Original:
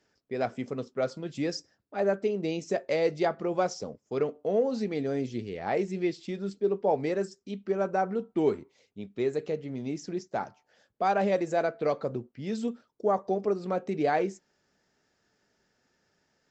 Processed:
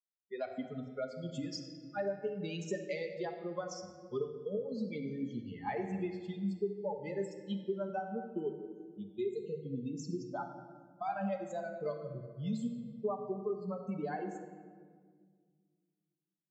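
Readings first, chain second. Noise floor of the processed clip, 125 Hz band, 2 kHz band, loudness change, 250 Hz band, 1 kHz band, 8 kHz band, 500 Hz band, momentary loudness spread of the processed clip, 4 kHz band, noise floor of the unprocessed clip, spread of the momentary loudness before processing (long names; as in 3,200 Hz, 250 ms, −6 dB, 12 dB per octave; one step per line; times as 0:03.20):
below −85 dBFS, −4.5 dB, −9.5 dB, −9.0 dB, −6.5 dB, −10.5 dB, can't be measured, −10.0 dB, 7 LU, −7.0 dB, −75 dBFS, 9 LU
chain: spectral dynamics exaggerated over time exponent 2
downward compressor 12 to 1, threshold −42 dBFS, peak gain reduction 20 dB
noise reduction from a noise print of the clip's start 24 dB
high-pass filter 130 Hz
high-shelf EQ 6,000 Hz −4 dB
rectangular room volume 2,400 cubic metres, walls mixed, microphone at 1.3 metres
level +7 dB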